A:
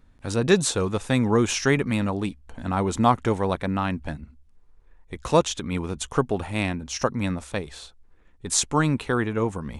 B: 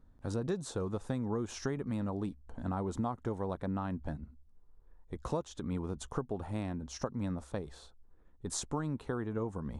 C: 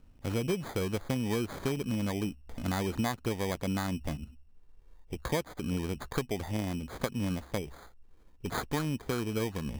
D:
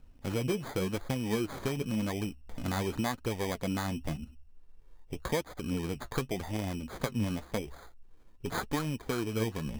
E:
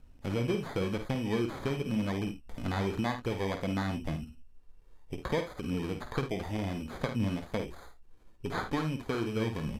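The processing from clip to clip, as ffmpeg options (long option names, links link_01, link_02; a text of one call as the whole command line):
ffmpeg -i in.wav -af "highshelf=frequency=3400:gain=-10,acompressor=threshold=-26dB:ratio=6,equalizer=frequency=2400:width=1.4:gain=-11,volume=-5dB" out.wav
ffmpeg -i in.wav -af "acrusher=samples=16:mix=1:aa=0.000001,volume=3.5dB" out.wav
ffmpeg -i in.wav -af "flanger=delay=1.1:depth=8.3:regen=52:speed=0.9:shape=triangular,volume=4dB" out.wav
ffmpeg -i in.wav -filter_complex "[0:a]aresample=32000,aresample=44100,acrossover=split=4600[link_01][link_02];[link_02]acompressor=threshold=-56dB:ratio=4:attack=1:release=60[link_03];[link_01][link_03]amix=inputs=2:normalize=0,aecho=1:1:51|76:0.398|0.2" out.wav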